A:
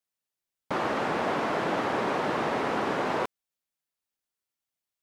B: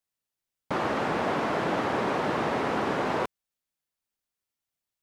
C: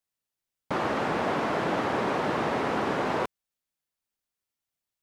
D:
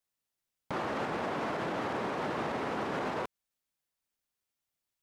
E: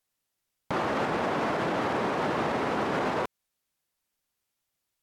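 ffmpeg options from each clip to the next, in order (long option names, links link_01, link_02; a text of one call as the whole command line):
ffmpeg -i in.wav -af "lowshelf=frequency=150:gain=6" out.wav
ffmpeg -i in.wav -af anull out.wav
ffmpeg -i in.wav -af "alimiter=level_in=1.5dB:limit=-24dB:level=0:latency=1:release=107,volume=-1.5dB" out.wav
ffmpeg -i in.wav -af "volume=6dB" -ar 44100 -c:a libvorbis -b:a 128k out.ogg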